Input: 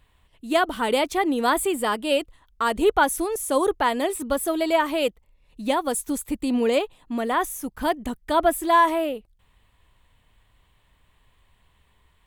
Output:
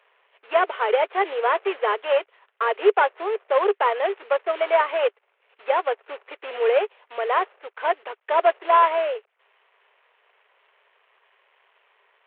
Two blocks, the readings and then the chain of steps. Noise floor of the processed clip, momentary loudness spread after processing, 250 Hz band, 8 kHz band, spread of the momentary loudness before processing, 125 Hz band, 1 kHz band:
-71 dBFS, 10 LU, -15.0 dB, under -40 dB, 9 LU, no reading, +1.5 dB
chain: CVSD coder 16 kbps; Chebyshev high-pass 400 Hz, order 6; trim +4 dB

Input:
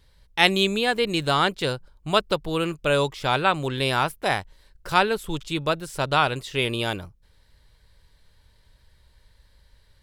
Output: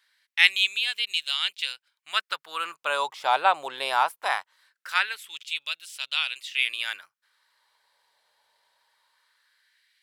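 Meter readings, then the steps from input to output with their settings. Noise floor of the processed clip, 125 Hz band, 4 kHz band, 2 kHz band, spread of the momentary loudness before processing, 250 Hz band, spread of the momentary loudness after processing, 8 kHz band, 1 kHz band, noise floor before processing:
under -85 dBFS, under -35 dB, +0.5 dB, 0.0 dB, 8 LU, under -25 dB, 12 LU, -3.5 dB, -2.5 dB, -60 dBFS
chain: LFO high-pass sine 0.21 Hz 750–2900 Hz; trim -4 dB

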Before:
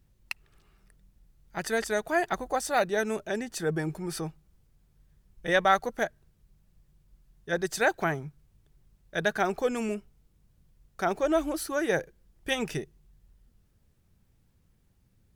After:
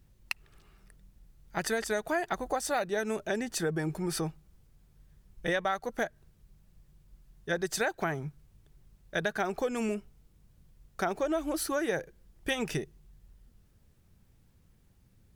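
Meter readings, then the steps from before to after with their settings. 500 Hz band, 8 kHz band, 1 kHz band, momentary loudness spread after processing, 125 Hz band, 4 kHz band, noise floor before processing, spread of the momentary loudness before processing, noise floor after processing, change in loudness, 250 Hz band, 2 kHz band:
-3.5 dB, 0.0 dB, -5.0 dB, 9 LU, -1.0 dB, -2.0 dB, -67 dBFS, 13 LU, -64 dBFS, -3.5 dB, -1.5 dB, -4.0 dB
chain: compression 6:1, threshold -30 dBFS, peak gain reduction 13 dB; trim +3 dB

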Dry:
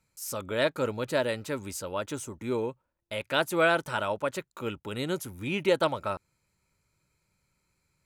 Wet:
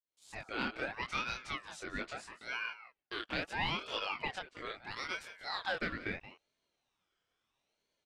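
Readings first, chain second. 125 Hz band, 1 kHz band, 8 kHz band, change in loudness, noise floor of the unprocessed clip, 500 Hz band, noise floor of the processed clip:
-12.0 dB, -7.5 dB, -14.5 dB, -8.5 dB, -79 dBFS, -17.0 dB, -85 dBFS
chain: fade-in on the opening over 0.59 s; distance through air 110 m; chorus 2 Hz, delay 19 ms, depth 7.6 ms; frequency weighting A; in parallel at -9.5 dB: one-sided clip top -24.5 dBFS; on the sum: compression 3:1, threshold -31 dBFS, peak gain reduction 8.5 dB; on a send: delay 178 ms -15 dB; on the sum: ring modulator with a swept carrier 1.4 kHz, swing 40%, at 0.76 Hz

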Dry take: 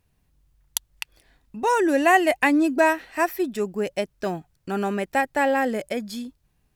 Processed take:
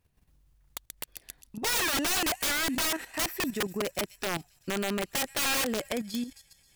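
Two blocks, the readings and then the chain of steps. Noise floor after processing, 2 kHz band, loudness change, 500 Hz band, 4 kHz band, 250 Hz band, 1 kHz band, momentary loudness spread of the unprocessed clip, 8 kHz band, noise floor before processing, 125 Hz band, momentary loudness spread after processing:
-66 dBFS, -7.0 dB, -6.0 dB, -11.5 dB, +6.0 dB, -10.0 dB, -12.5 dB, 17 LU, +5.0 dB, -69 dBFS, -3.5 dB, 16 LU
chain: feedback echo behind a high-pass 133 ms, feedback 74%, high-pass 5.4 kHz, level -10 dB; level held to a coarse grid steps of 11 dB; integer overflow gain 25.5 dB; trim +3 dB

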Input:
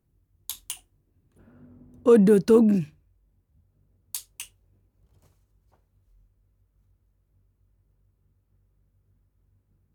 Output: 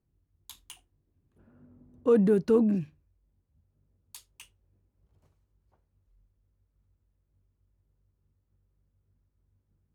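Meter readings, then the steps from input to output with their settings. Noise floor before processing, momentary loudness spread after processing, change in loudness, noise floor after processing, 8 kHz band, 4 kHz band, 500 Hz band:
-71 dBFS, 10 LU, -3.0 dB, -77 dBFS, -14.0 dB, -9.5 dB, -5.5 dB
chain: treble shelf 4.6 kHz -11 dB; trim -5.5 dB

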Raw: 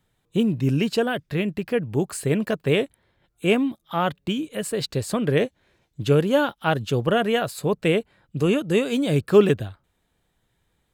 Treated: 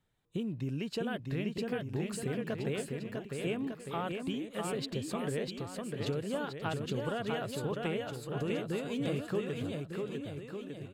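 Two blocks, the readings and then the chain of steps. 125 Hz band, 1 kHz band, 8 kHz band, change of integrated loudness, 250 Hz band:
-11.5 dB, -12.5 dB, -10.5 dB, -13.5 dB, -12.0 dB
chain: treble shelf 9.6 kHz -7 dB; compression, threshold -24 dBFS, peak gain reduction 14 dB; bouncing-ball echo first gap 650 ms, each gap 0.85×, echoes 5; trim -8.5 dB

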